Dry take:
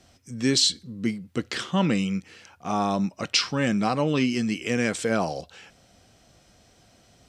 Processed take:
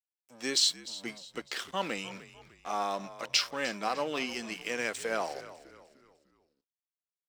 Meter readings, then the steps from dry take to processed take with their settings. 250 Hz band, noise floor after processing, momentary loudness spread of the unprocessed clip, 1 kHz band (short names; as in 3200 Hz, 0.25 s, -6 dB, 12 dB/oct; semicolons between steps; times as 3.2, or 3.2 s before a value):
-17.0 dB, under -85 dBFS, 9 LU, -5.0 dB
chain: gate -45 dBFS, range -7 dB; crossover distortion -41 dBFS; HPF 480 Hz 12 dB/oct; on a send: frequency-shifting echo 0.301 s, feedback 41%, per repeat -67 Hz, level -16 dB; on the sum: gain -4 dB